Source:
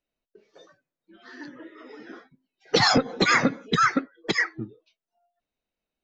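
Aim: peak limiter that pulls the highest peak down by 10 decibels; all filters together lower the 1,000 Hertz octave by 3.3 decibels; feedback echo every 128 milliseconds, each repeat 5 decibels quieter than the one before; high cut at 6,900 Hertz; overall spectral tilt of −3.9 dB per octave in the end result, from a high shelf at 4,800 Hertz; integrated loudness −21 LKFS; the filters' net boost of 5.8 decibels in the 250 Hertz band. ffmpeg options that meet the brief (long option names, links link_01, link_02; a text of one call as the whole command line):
ffmpeg -i in.wav -af "lowpass=6900,equalizer=frequency=250:width_type=o:gain=7,equalizer=frequency=1000:width_type=o:gain=-5.5,highshelf=frequency=4800:gain=3.5,alimiter=limit=-15dB:level=0:latency=1,aecho=1:1:128|256|384|512|640|768|896:0.562|0.315|0.176|0.0988|0.0553|0.031|0.0173,volume=4.5dB" out.wav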